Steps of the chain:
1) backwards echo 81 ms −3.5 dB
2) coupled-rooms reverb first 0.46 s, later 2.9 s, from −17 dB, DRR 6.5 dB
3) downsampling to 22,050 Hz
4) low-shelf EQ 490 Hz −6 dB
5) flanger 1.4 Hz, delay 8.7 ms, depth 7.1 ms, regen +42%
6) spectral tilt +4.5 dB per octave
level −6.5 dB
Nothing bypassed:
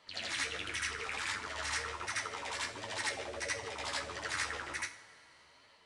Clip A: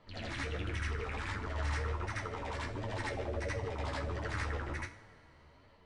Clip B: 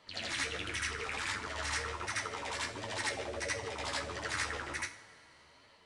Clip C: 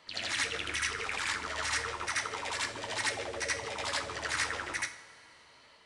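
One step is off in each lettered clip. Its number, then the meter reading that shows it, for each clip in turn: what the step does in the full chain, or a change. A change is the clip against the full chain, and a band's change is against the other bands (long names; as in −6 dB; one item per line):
6, 125 Hz band +18.0 dB
4, 125 Hz band +5.0 dB
5, change in integrated loudness +4.0 LU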